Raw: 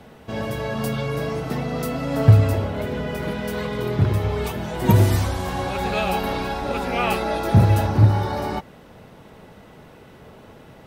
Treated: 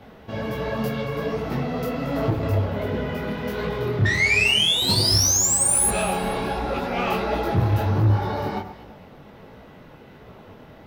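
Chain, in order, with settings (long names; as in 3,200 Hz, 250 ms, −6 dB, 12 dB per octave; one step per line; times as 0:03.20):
parametric band 8,600 Hz −12 dB 0.82 octaves
sound drawn into the spectrogram rise, 0:04.05–0:05.89, 1,800–11,000 Hz −16 dBFS
soft clipping −16 dBFS, distortion −9 dB
delay that swaps between a low-pass and a high-pass 113 ms, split 1,600 Hz, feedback 56%, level −10 dB
micro pitch shift up and down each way 47 cents
level +3.5 dB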